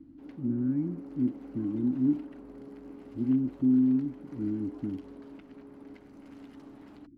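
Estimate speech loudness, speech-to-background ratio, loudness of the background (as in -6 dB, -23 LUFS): -29.5 LUFS, 19.5 dB, -49.0 LUFS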